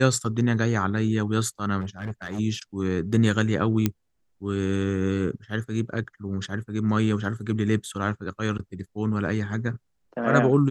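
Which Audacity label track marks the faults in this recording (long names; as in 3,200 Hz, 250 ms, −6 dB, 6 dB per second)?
1.810000	2.400000	clipping −26.5 dBFS
3.860000	3.860000	click −8 dBFS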